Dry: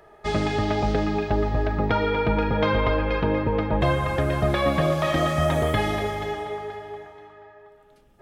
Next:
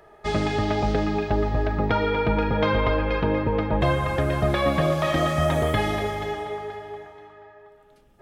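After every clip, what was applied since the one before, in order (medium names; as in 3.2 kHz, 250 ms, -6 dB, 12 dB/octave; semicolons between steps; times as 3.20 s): no audible change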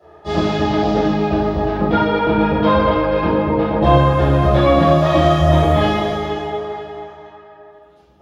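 high-pass 66 Hz; reverberation RT60 0.70 s, pre-delay 3 ms, DRR -19 dB; trim -14.5 dB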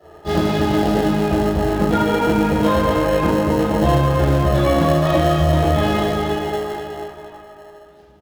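in parallel at -9 dB: sample-and-hold 37×; on the sum: compression 2.5:1, threshold -14 dBFS, peak gain reduction 6 dB; speakerphone echo 380 ms, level -13 dB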